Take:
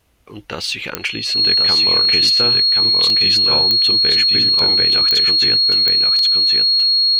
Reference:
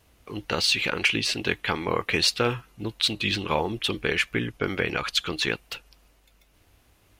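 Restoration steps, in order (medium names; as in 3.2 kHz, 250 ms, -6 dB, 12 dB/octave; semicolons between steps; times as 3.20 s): de-click; band-stop 4.3 kHz, Q 30; interpolate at 3.10/4.59/6.19 s, 1.9 ms; inverse comb 1077 ms -4.5 dB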